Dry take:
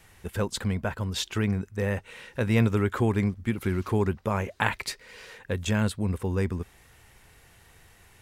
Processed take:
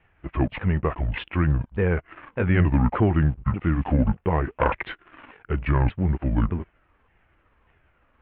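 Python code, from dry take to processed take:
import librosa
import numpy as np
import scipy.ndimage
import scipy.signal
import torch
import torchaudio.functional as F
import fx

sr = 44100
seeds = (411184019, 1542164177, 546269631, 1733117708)

y = fx.pitch_ramps(x, sr, semitones=-10.5, every_ms=590)
y = fx.leveller(y, sr, passes=2)
y = scipy.signal.sosfilt(scipy.signal.butter(8, 2900.0, 'lowpass', fs=sr, output='sos'), y)
y = y * 10.0 ** (-1.5 / 20.0)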